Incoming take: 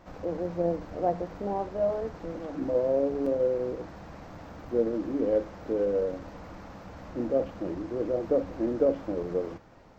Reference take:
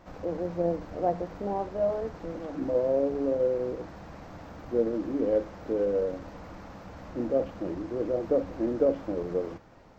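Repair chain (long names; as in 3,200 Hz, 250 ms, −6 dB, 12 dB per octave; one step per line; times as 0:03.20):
repair the gap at 0:03.26/0:04.35/0:04.69, 4.1 ms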